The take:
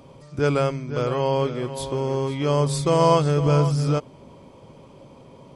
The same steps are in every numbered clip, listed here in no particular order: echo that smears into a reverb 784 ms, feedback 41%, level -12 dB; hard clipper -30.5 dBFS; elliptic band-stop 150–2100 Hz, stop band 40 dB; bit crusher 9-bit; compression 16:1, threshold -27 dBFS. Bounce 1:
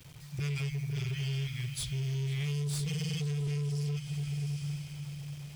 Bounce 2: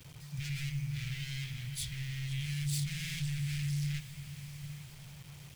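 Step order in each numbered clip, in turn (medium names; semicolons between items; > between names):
elliptic band-stop > bit crusher > echo that smears into a reverb > compression > hard clipper; hard clipper > echo that smears into a reverb > compression > elliptic band-stop > bit crusher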